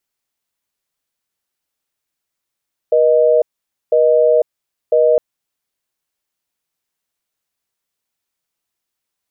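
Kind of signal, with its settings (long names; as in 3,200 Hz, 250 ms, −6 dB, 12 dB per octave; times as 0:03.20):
call progress tone busy tone, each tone −11.5 dBFS 2.26 s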